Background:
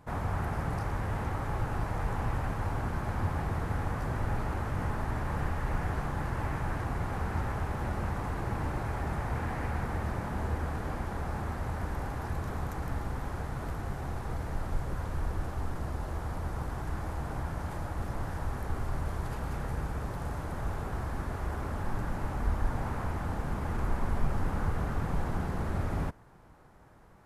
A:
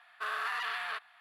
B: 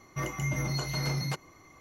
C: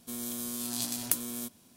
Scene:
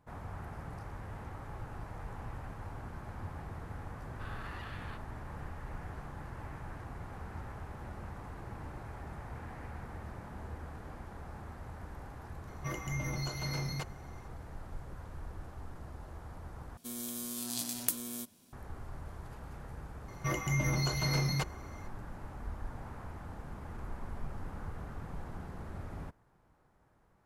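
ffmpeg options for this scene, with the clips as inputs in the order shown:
-filter_complex "[2:a]asplit=2[a][b];[0:a]volume=-11.5dB,asplit=2[c][d];[c]atrim=end=16.774[e];[3:a]atrim=end=1.76,asetpts=PTS-STARTPTS,volume=-3.5dB[f];[d]atrim=start=18.526[g];[1:a]atrim=end=1.2,asetpts=PTS-STARTPTS,volume=-13.5dB,afade=t=in:d=0.004:c=hsin,afade=t=out:st=1.196:d=0.004:c=hsin,adelay=3990[h];[a]atrim=end=1.8,asetpts=PTS-STARTPTS,volume=-5.5dB,afade=t=in:d=0.004:c=hsin,afade=t=out:st=1.796:d=0.004:c=hsin,adelay=12480[i];[b]atrim=end=1.8,asetpts=PTS-STARTPTS,afade=t=in:d=0.004:c=hsin,afade=t=out:st=1.796:d=0.004:c=hsin,adelay=20080[j];[e][f]acrossfade=d=0.004:c1=hsin:c2=hsin[k];[k][g]acrossfade=d=0.004:c1=hsin:c2=hsin[l];[l][h][i][j]amix=inputs=4:normalize=0"

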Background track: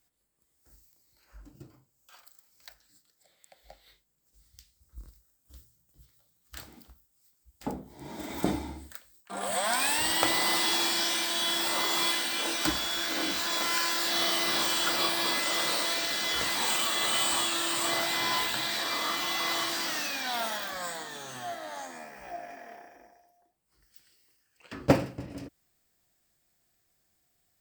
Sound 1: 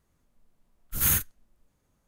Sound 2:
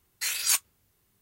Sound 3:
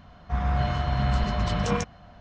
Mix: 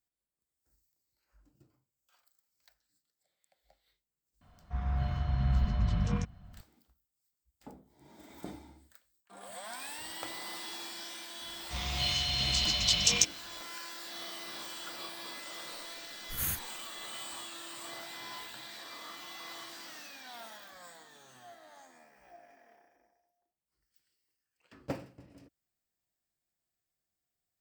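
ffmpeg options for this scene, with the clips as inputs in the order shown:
-filter_complex "[3:a]asplit=2[a][b];[0:a]volume=-15.5dB[c];[a]asubboost=boost=7:cutoff=230[d];[b]aexciter=amount=10.9:drive=9.4:freq=2.4k[e];[d]atrim=end=2.2,asetpts=PTS-STARTPTS,volume=-12.5dB,afade=t=in:d=0.004:c=hsin,afade=t=out:st=2.196:d=0.004:c=hsin,adelay=194481S[f];[e]atrim=end=2.2,asetpts=PTS-STARTPTS,volume=-13.5dB,afade=t=in:d=0.004:c=hsin,afade=t=out:st=2.196:d=0.004:c=hsin,adelay=11410[g];[1:a]atrim=end=2.07,asetpts=PTS-STARTPTS,volume=-10.5dB,afade=t=in:d=0.004:c=hsin,afade=t=out:st=2.066:d=0.004:c=hsin,adelay=15370[h];[c][f][g][h]amix=inputs=4:normalize=0"

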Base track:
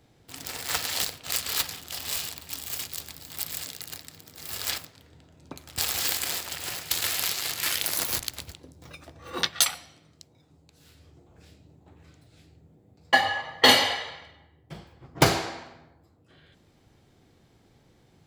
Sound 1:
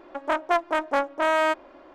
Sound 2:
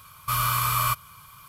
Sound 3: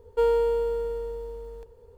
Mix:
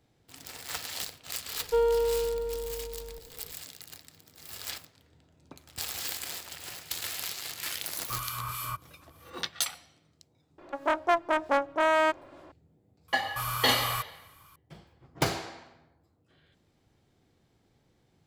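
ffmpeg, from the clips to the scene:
-filter_complex "[2:a]asplit=2[a][b];[0:a]volume=-8dB[c];[a]acrossover=split=1800[d][e];[d]aeval=exprs='val(0)*(1-0.7/2+0.7/2*cos(2*PI*3.2*n/s))':c=same[f];[e]aeval=exprs='val(0)*(1-0.7/2-0.7/2*cos(2*PI*3.2*n/s))':c=same[g];[f][g]amix=inputs=2:normalize=0[h];[3:a]atrim=end=1.97,asetpts=PTS-STARTPTS,volume=-2.5dB,afade=t=in:d=0.004:c=hsin,afade=t=out:st=1.966:d=0.004:c=hsin,adelay=1550[i];[h]atrim=end=1.48,asetpts=PTS-STARTPTS,volume=-8.5dB,afade=t=in:d=0.004:c=hsin,afade=t=out:st=1.476:d=0.004:c=hsin,adelay=7820[j];[1:a]atrim=end=1.94,asetpts=PTS-STARTPTS,volume=-2dB,afade=t=in:d=0.004:c=hsin,afade=t=out:st=1.936:d=0.004:c=hsin,adelay=466578S[k];[b]atrim=end=1.48,asetpts=PTS-STARTPTS,volume=-8.5dB,afade=t=in:d=0.004:c=hsin,afade=t=out:st=1.476:d=0.004:c=hsin,adelay=13080[l];[c][i][j][k][l]amix=inputs=5:normalize=0"

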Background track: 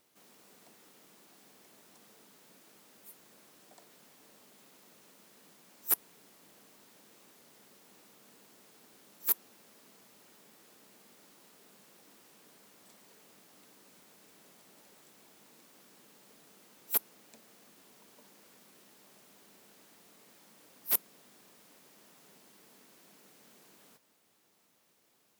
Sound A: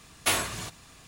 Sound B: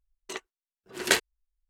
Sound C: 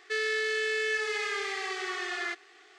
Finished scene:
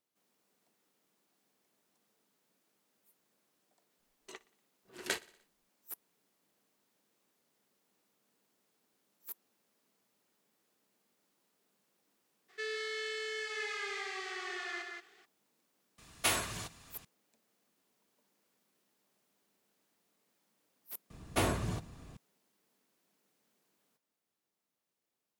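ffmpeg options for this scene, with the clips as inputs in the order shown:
-filter_complex "[1:a]asplit=2[a][b];[0:a]volume=-17.5dB[c];[2:a]aecho=1:1:60|120|180|240|300:0.0794|0.0477|0.0286|0.0172|0.0103[d];[3:a]aecho=1:1:55.39|177.8:0.316|0.631[e];[b]tiltshelf=f=920:g=9[f];[d]atrim=end=1.69,asetpts=PTS-STARTPTS,volume=-13dB,afade=t=in:d=0.004:c=hsin,afade=t=out:st=1.686:d=0.004:c=hsin,adelay=3990[g];[e]atrim=end=2.78,asetpts=PTS-STARTPTS,volume=-8.5dB,afade=t=in:d=0.02,afade=t=out:st=2.76:d=0.02,adelay=12480[h];[a]atrim=end=1.07,asetpts=PTS-STARTPTS,volume=-5.5dB,afade=t=in:d=0.004:c=hsin,afade=t=out:st=1.066:d=0.004:c=hsin,adelay=15980[i];[f]atrim=end=1.07,asetpts=PTS-STARTPTS,volume=-3.5dB,afade=t=in:d=0.004:c=hsin,afade=t=out:st=1.066:d=0.004:c=hsin,adelay=21100[j];[c][g][h][i][j]amix=inputs=5:normalize=0"

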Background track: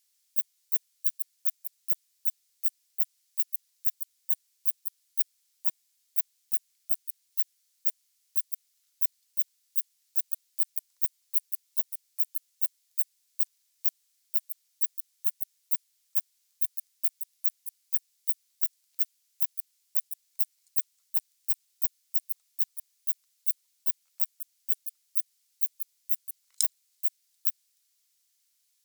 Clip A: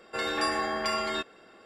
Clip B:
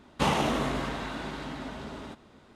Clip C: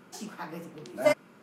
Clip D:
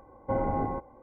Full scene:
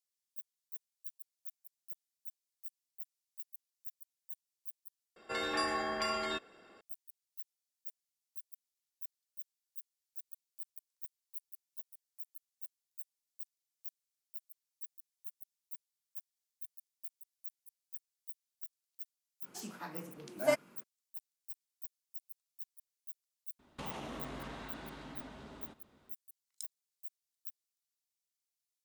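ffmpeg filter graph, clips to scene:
-filter_complex "[0:a]volume=-19dB[a];[3:a]highshelf=f=5.9k:g=6.5[b];[2:a]acompressor=threshold=-28dB:ratio=6:attack=3.2:release=140:knee=1:detection=peak[c];[a]asplit=2[d][e];[d]atrim=end=5.164[f];[1:a]atrim=end=1.65,asetpts=PTS-STARTPTS,volume=-5.5dB[g];[e]atrim=start=6.806[h];[b]atrim=end=1.42,asetpts=PTS-STARTPTS,volume=-6dB,afade=t=in:d=0.02,afade=t=out:st=1.4:d=0.02,adelay=19420[i];[c]atrim=end=2.55,asetpts=PTS-STARTPTS,volume=-11.5dB,afade=t=in:d=0.004:c=hsin,afade=t=out:st=2.546:d=0.004:c=hsin,adelay=23590[j];[f][g]acrossfade=d=0.004:c1=hsin:c2=hsin[k];[k][h]acrossfade=d=0.004:c1=hsin:c2=hsin[l];[l][i][j]amix=inputs=3:normalize=0"

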